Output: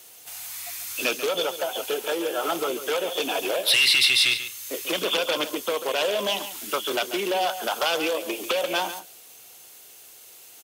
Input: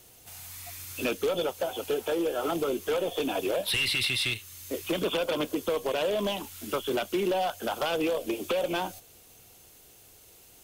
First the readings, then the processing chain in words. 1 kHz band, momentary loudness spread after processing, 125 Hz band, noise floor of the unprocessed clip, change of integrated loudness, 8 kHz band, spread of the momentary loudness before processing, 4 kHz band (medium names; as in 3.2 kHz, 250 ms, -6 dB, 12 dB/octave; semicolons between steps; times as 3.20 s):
+4.5 dB, 14 LU, -8.0 dB, -55 dBFS, +5.5 dB, +9.0 dB, 12 LU, +9.0 dB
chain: high-pass 890 Hz 6 dB/octave; dynamic bell 5.3 kHz, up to +5 dB, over -45 dBFS, Q 1.5; echo from a far wall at 24 m, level -11 dB; trim +7.5 dB